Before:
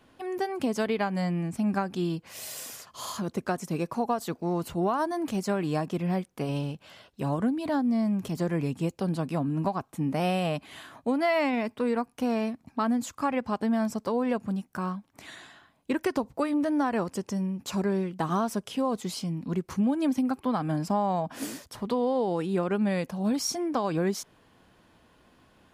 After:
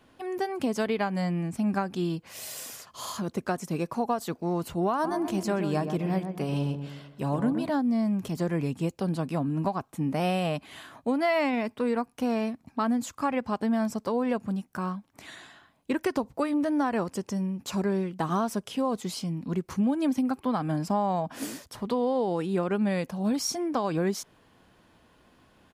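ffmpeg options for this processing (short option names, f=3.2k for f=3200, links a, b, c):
-filter_complex "[0:a]asplit=3[a][b][c];[a]afade=t=out:st=5.03:d=0.02[d];[b]asplit=2[e][f];[f]adelay=127,lowpass=f=1.2k:p=1,volume=-6.5dB,asplit=2[g][h];[h]adelay=127,lowpass=f=1.2k:p=1,volume=0.48,asplit=2[i][j];[j]adelay=127,lowpass=f=1.2k:p=1,volume=0.48,asplit=2[k][l];[l]adelay=127,lowpass=f=1.2k:p=1,volume=0.48,asplit=2[m][n];[n]adelay=127,lowpass=f=1.2k:p=1,volume=0.48,asplit=2[o][p];[p]adelay=127,lowpass=f=1.2k:p=1,volume=0.48[q];[e][g][i][k][m][o][q]amix=inputs=7:normalize=0,afade=t=in:st=5.03:d=0.02,afade=t=out:st=7.69:d=0.02[r];[c]afade=t=in:st=7.69:d=0.02[s];[d][r][s]amix=inputs=3:normalize=0"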